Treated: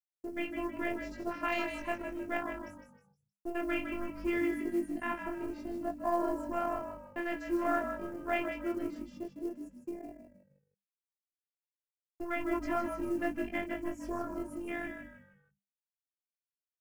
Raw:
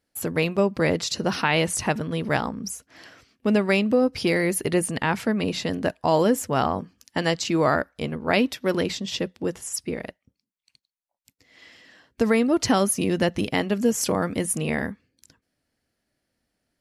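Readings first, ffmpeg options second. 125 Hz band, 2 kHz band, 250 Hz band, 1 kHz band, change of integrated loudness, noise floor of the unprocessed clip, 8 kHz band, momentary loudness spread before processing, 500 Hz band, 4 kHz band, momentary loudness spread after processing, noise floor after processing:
-24.5 dB, -11.0 dB, -11.5 dB, -9.5 dB, -12.0 dB, -83 dBFS, under -25 dB, 9 LU, -12.5 dB, -21.0 dB, 11 LU, under -85 dBFS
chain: -filter_complex "[0:a]highshelf=f=6.6k:g=-10,acrossover=split=800|4600[a][b][c];[a]asoftclip=type=hard:threshold=-22dB[d];[b]asplit=2[e][f];[f]adelay=34,volume=-8dB[g];[e][g]amix=inputs=2:normalize=0[h];[d][h][c]amix=inputs=3:normalize=0,afwtdn=0.0316,flanger=delay=19:depth=2.7:speed=0.17,afftfilt=real='hypot(re,im)*cos(PI*b)':imag='0':win_size=512:overlap=0.75,acrusher=bits=7:mode=log:mix=0:aa=0.000001,equalizer=f=3.7k:t=o:w=0.36:g=-10,agate=range=-43dB:threshold=-54dB:ratio=16:detection=peak,asplit=5[i][j][k][l][m];[j]adelay=156,afreqshift=-50,volume=-7dB[n];[k]adelay=312,afreqshift=-100,volume=-15.9dB[o];[l]adelay=468,afreqshift=-150,volume=-24.7dB[p];[m]adelay=624,afreqshift=-200,volume=-33.6dB[q];[i][n][o][p][q]amix=inputs=5:normalize=0,volume=-3dB"

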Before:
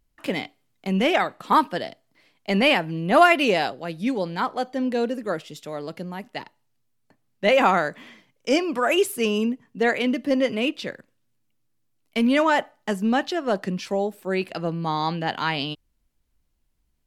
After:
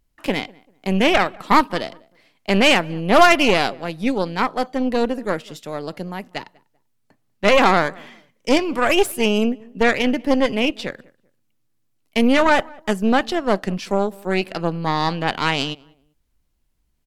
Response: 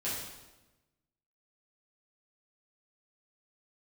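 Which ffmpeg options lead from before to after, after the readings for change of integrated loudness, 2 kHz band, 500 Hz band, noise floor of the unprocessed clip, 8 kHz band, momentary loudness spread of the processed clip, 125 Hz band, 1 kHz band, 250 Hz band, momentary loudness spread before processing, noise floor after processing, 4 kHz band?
+4.0 dB, +4.5 dB, +3.5 dB, -70 dBFS, +6.0 dB, 16 LU, +3.5 dB, +3.5 dB, +3.5 dB, 15 LU, -67 dBFS, +5.0 dB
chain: -filter_complex "[0:a]aeval=exprs='0.596*(cos(1*acos(clip(val(0)/0.596,-1,1)))-cos(1*PI/2))+0.0944*(cos(6*acos(clip(val(0)/0.596,-1,1)))-cos(6*PI/2))':c=same,asplit=2[a][b];[b]adelay=195,lowpass=f=1.5k:p=1,volume=-24dB,asplit=2[c][d];[d]adelay=195,lowpass=f=1.5k:p=1,volume=0.28[e];[a][c][e]amix=inputs=3:normalize=0,volume=2.5dB"

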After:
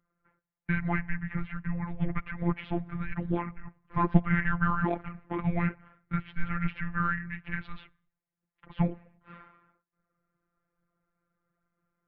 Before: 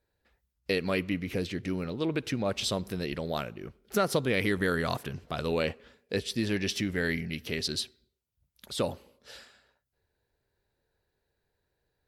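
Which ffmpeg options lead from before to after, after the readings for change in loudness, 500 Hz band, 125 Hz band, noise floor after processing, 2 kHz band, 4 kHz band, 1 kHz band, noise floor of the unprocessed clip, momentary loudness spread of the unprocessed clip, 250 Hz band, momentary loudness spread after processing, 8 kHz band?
-0.5 dB, -9.0 dB, +4.5 dB, under -85 dBFS, 0.0 dB, under -20 dB, +4.0 dB, -81 dBFS, 12 LU, +1.0 dB, 11 LU, under -40 dB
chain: -af "aphaser=in_gain=1:out_gain=1:delay=4.8:decay=0.43:speed=1.2:type=triangular,highpass=f=190:t=q:w=0.5412,highpass=f=190:t=q:w=1.307,lowpass=f=2.4k:t=q:w=0.5176,lowpass=f=2.4k:t=q:w=0.7071,lowpass=f=2.4k:t=q:w=1.932,afreqshift=-340,afftfilt=real='hypot(re,im)*cos(PI*b)':imag='0':win_size=1024:overlap=0.75,volume=5.5dB"

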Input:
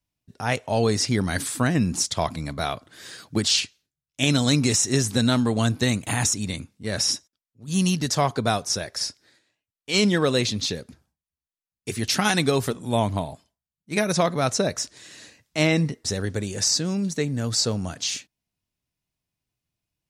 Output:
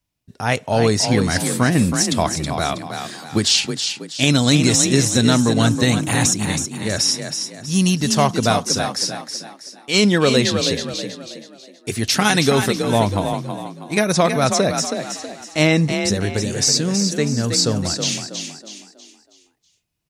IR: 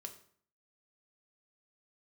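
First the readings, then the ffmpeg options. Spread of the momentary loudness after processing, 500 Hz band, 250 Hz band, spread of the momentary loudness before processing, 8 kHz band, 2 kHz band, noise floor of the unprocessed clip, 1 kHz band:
14 LU, +6.0 dB, +6.0 dB, 11 LU, +6.0 dB, +6.0 dB, under -85 dBFS, +6.0 dB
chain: -filter_complex "[0:a]asplit=6[a][b][c][d][e][f];[b]adelay=322,afreqshift=34,volume=-7dB[g];[c]adelay=644,afreqshift=68,volume=-15.2dB[h];[d]adelay=966,afreqshift=102,volume=-23.4dB[i];[e]adelay=1288,afreqshift=136,volume=-31.5dB[j];[f]adelay=1610,afreqshift=170,volume=-39.7dB[k];[a][g][h][i][j][k]amix=inputs=6:normalize=0,volume=5dB"

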